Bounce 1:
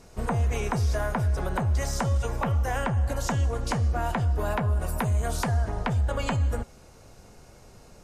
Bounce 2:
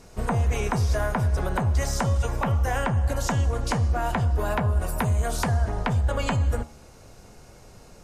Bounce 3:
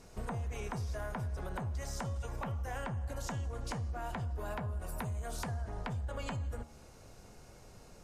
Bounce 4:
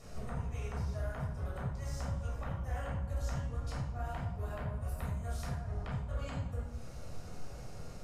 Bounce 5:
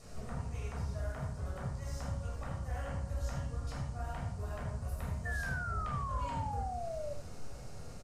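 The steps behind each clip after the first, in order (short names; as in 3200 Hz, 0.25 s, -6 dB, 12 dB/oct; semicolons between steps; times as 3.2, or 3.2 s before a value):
de-hum 76.26 Hz, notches 17; gain +2.5 dB
compressor 4:1, threshold -29 dBFS, peak gain reduction 9.5 dB; soft clip -20.5 dBFS, distortion -28 dB; gain -6.5 dB
compressor 2.5:1, threshold -48 dBFS, peak gain reduction 9.5 dB; flange 1.4 Hz, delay 9.3 ms, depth 8.7 ms, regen +63%; reverb RT60 0.75 s, pre-delay 14 ms, DRR -3 dB; gain +2.5 dB
painted sound fall, 5.25–7.14, 570–1800 Hz -39 dBFS; band noise 4200–9300 Hz -65 dBFS; echo 76 ms -10 dB; gain -1.5 dB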